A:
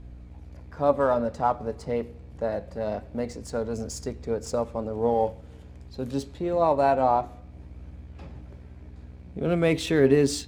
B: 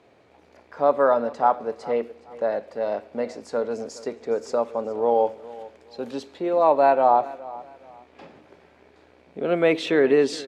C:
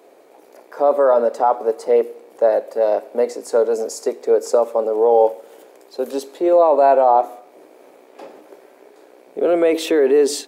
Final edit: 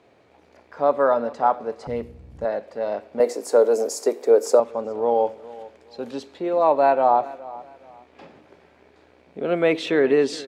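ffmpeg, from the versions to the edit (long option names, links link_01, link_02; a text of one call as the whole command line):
ffmpeg -i take0.wav -i take1.wav -i take2.wav -filter_complex "[1:a]asplit=3[link_01][link_02][link_03];[link_01]atrim=end=1.872[link_04];[0:a]atrim=start=1.868:end=2.452[link_05];[link_02]atrim=start=2.448:end=3.202[link_06];[2:a]atrim=start=3.198:end=4.602[link_07];[link_03]atrim=start=4.598[link_08];[link_04][link_05]acrossfade=duration=0.004:curve1=hsin:curve2=hsin[link_09];[link_09][link_06]acrossfade=duration=0.004:curve1=hsin:curve2=hsin[link_10];[link_10][link_07]acrossfade=duration=0.004:curve1=hsin:curve2=hsin[link_11];[link_11][link_08]acrossfade=duration=0.004:curve1=hsin:curve2=hsin" out.wav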